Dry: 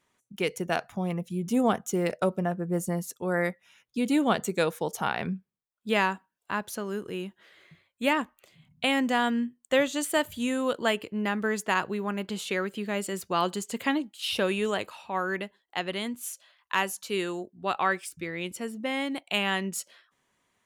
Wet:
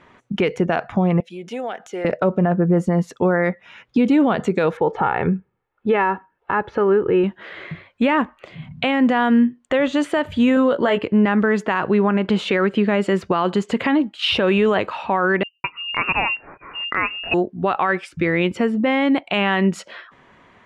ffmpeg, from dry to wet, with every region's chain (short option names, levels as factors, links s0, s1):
-filter_complex "[0:a]asettb=1/sr,asplit=3[s0][s1][s2];[s0]atrim=end=1.204[s3];[s1]atrim=start=1.2:end=2.05,asetpts=PTS-STARTPTS,afade=t=in:d=0.004:c=qsin,afade=t=out:st=0.846:d=0.004:c=qsin,highpass=780,equalizer=f=1100:w=2.5:g=-14.5,acompressor=threshold=0.00447:ratio=4:attack=3.2:release=140:knee=1:detection=peak[s4];[s2]atrim=start=2.046[s5];[s3][s4]acrossfade=d=0.004:c1=hsin:c2=qsin[s6];[s6][s5]acrossfade=d=0.004:c1=qsin:c2=hsin,asettb=1/sr,asplit=3[s7][s8][s9];[s7]atrim=end=4.774[s10];[s8]atrim=start=4.77:end=7.24,asetpts=PTS-STARTPTS,afade=t=in:d=0.004:c=qsin,afade=t=out:st=2.466:d=0.004:c=qsin,lowpass=2100,aecho=1:1:2.3:0.54,atrim=end_sample=108927[s11];[s9]atrim=start=7.236[s12];[s10][s11]acrossfade=d=0.004:c1=hsin:c2=qsin[s13];[s13][s12]acrossfade=d=0.004:c1=qsin:c2=hsin,asettb=1/sr,asplit=3[s14][s15][s16];[s14]atrim=end=10.554[s17];[s15]atrim=start=10.55:end=10.99,asetpts=PTS-STARTPTS,afade=t=in:d=0.004:c=qsin,afade=t=out:st=0.436:d=0.004:c=qsin,equalizer=f=570:w=7.6:g=5.5,bandreject=f=2500:w=6.1,asplit=2[s18][s19];[s19]adelay=16,volume=0.447[s20];[s18][s20]amix=inputs=2:normalize=0,atrim=end_sample=19404[s21];[s16]atrim=start=10.986[s22];[s17][s21]acrossfade=d=0.004:c1=hsin:c2=qsin[s23];[s23][s22]acrossfade=d=0.004:c1=qsin:c2=hsin,asettb=1/sr,asplit=3[s24][s25][s26];[s24]atrim=end=15.434[s27];[s25]atrim=start=15.43:end=17.34,asetpts=PTS-STARTPTS,afade=t=in:d=0.004:c=qsin,afade=t=out:st=1.906:d=0.004:c=qsin,acrossover=split=210[s28][s29];[s29]adelay=210[s30];[s28][s30]amix=inputs=2:normalize=0,atrim=end_sample=84231,lowpass=f=2600:t=q:w=0.5098,lowpass=f=2600:t=q:w=0.6013,lowpass=f=2600:t=q:w=0.9,lowpass=f=2600:t=q:w=2.563,afreqshift=-3000[s31];[s26]atrim=start=17.336[s32];[s27][s31]acrossfade=d=0.004:c1=hsin:c2=qsin[s33];[s33][s32]acrossfade=d=0.004:c1=qsin:c2=hsin,lowpass=2200,acompressor=threshold=0.00282:ratio=1.5,alimiter=level_in=39.8:limit=0.891:release=50:level=0:latency=1,volume=0.398"